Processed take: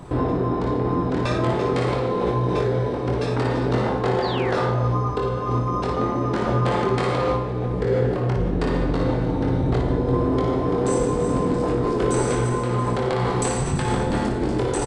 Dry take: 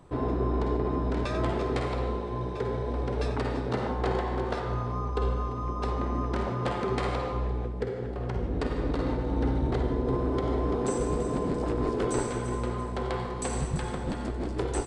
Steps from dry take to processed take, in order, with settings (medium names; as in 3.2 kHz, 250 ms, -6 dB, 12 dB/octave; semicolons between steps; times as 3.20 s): peaking EQ 150 Hz +2.5 dB 0.8 oct; in parallel at -0.5 dB: compressor with a negative ratio -34 dBFS, ratio -0.5; 4.22–4.98 s: on the sum: painted sound fall 280–4900 Hz -40 dBFS; 5.89–6.59 s: doubling 14 ms -6 dB; early reflections 23 ms -4.5 dB, 58 ms -6.5 dB; trim +3 dB